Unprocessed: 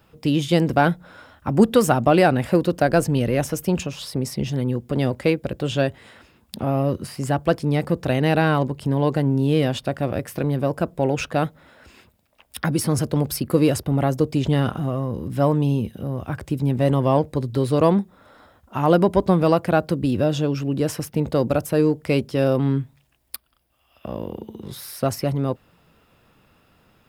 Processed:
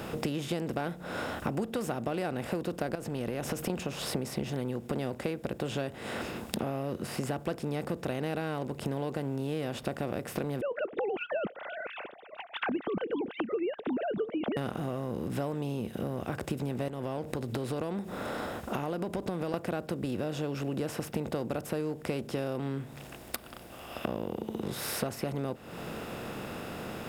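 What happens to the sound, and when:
2.95–3.70 s: compression, threshold -27 dBFS
10.61–14.57 s: formants replaced by sine waves
16.88–19.54 s: compression 2.5:1, threshold -33 dBFS
whole clip: spectral levelling over time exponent 0.6; compression 8:1, threshold -28 dBFS; trim -2 dB

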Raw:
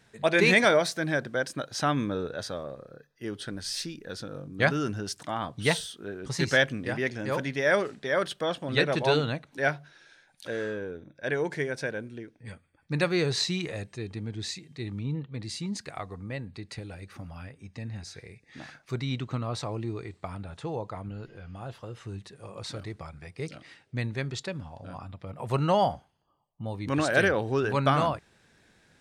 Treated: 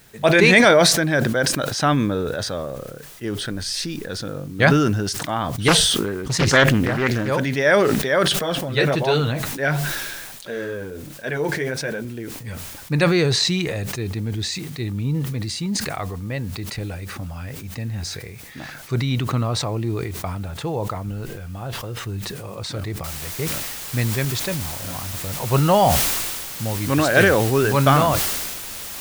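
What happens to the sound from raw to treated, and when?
5.68–7.28 s: loudspeaker Doppler distortion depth 0.83 ms
8.39–12.05 s: flange 1.4 Hz, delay 4.2 ms, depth 5.7 ms, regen -27%
23.04 s: noise floor step -61 dB -40 dB
whole clip: bass shelf 66 Hz +9.5 dB; decay stretcher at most 30 dB/s; trim +7 dB

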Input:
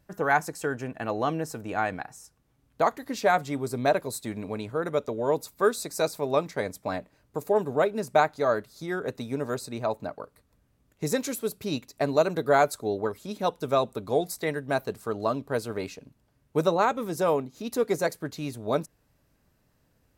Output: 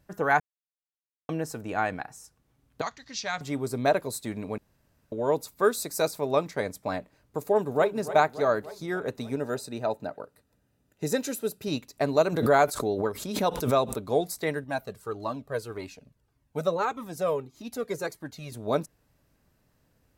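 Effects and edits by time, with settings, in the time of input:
0.40–1.29 s: mute
2.81–3.41 s: FFT filter 110 Hz 0 dB, 360 Hz -19 dB, 6 kHz +7 dB, 11 kHz -27 dB
4.58–5.12 s: room tone
5.71–6.11 s: peaking EQ 14 kHz +6.5 dB 0.68 oct
7.42–7.94 s: echo throw 290 ms, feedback 65%, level -13 dB
9.36–11.68 s: comb of notches 1.1 kHz
12.32–14.01 s: swell ahead of each attack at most 71 dB/s
14.64–18.52 s: Shepard-style flanger falling 1.7 Hz

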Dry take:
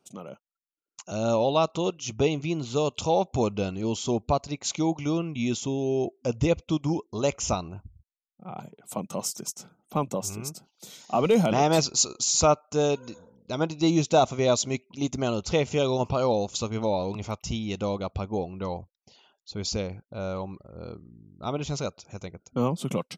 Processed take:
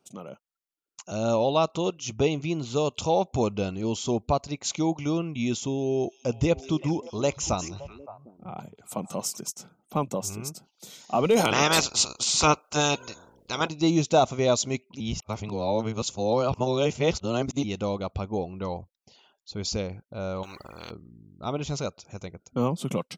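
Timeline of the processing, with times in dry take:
5.74–9.37 s: repeats whose band climbs or falls 189 ms, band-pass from 5.6 kHz, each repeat -1.4 oct, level -7 dB
11.36–13.68 s: spectral peaks clipped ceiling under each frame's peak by 20 dB
15.00–17.64 s: reverse
20.43–20.91 s: spectrum-flattening compressor 4:1

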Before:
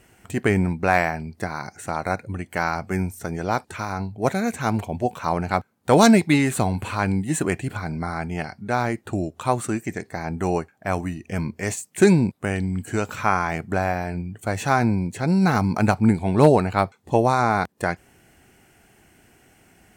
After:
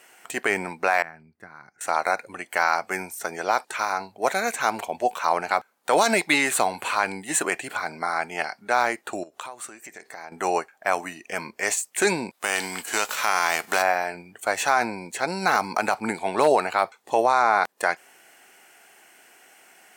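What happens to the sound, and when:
1.02–1.81 s: FFT filter 130 Hz 0 dB, 640 Hz -22 dB, 920 Hz -22 dB, 1.5 kHz -16 dB, 4.2 kHz -28 dB
9.23–10.32 s: compression 16:1, threshold -35 dBFS
12.33–13.81 s: formants flattened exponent 0.6
17.24–17.64 s: treble shelf 6.1 kHz -8.5 dB
whole clip: high-pass 640 Hz 12 dB/octave; peak limiter -13.5 dBFS; trim +5.5 dB

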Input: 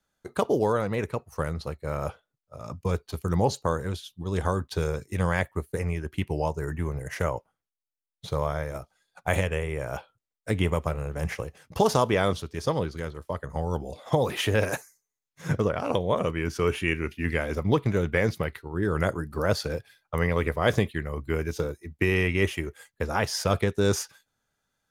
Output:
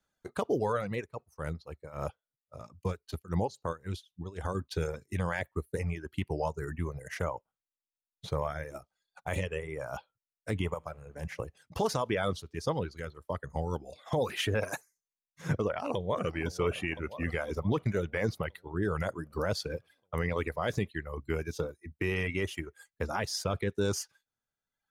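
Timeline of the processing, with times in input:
0.96–4.55 s: tremolo 3.7 Hz, depth 77%
10.74–11.39 s: feedback comb 54 Hz, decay 1.1 s, mix 50%
15.63–16.34 s: echo throw 510 ms, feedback 65%, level -11 dB
whole clip: reverb removal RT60 1.1 s; treble shelf 12 kHz -6 dB; peak limiter -16 dBFS; trim -3 dB

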